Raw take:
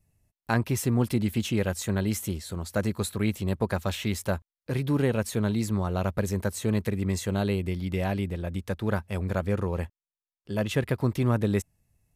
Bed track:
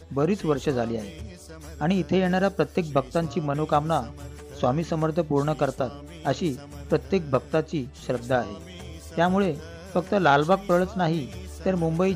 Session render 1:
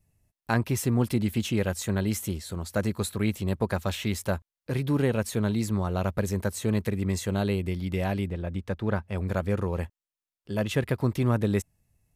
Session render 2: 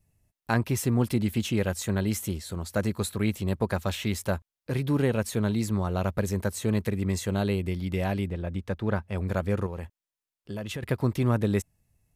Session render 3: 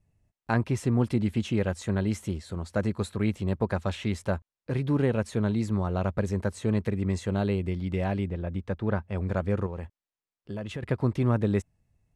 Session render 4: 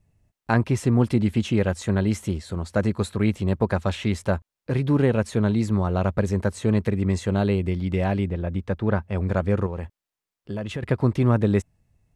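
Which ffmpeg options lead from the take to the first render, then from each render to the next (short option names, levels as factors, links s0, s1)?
-filter_complex "[0:a]asettb=1/sr,asplit=3[s0][s1][s2];[s0]atrim=end=8.284[s3];[s1]atrim=start=8.28:end=9.18,asetpts=PTS-STARTPTS,afade=t=in:d=0.004:c=qsin,afade=t=out:st=0.896:d=0.004:c=qsin,aemphasis=mode=reproduction:type=50kf[s4];[s2]atrim=start=9.176[s5];[s3][s4]acrossfade=d=0.004:c1=hsin:c2=qsin[s6];[s6][s5]acrossfade=d=0.004:c1=qsin:c2=hsin"
-filter_complex "[0:a]asettb=1/sr,asplit=3[s0][s1][s2];[s0]atrim=end=9.664[s3];[s1]atrim=start=9.66:end=10.83,asetpts=PTS-STARTPTS,afade=t=in:d=0.004:c=qsin,afade=t=out:st=1.166:d=0.004:c=qsin,acompressor=threshold=0.0282:ratio=6:attack=3.2:release=140:knee=1:detection=peak[s4];[s2]atrim=start=10.826[s5];[s3][s4]acrossfade=d=0.004:c1=hsin:c2=qsin[s6];[s6][s5]acrossfade=d=0.004:c1=qsin:c2=hsin"
-af "lowpass=f=10000:w=0.5412,lowpass=f=10000:w=1.3066,highshelf=f=3400:g=-10"
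-af "volume=1.78"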